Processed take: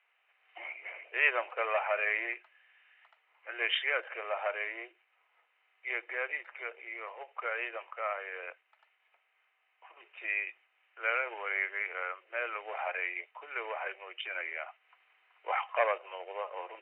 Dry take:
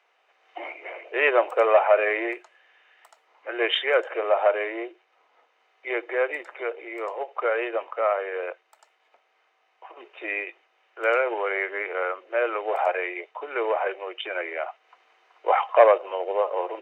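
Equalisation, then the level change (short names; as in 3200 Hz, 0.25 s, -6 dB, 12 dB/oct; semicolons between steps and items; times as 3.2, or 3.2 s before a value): band-pass 2600 Hz, Q 1.8; air absorption 480 m; +4.0 dB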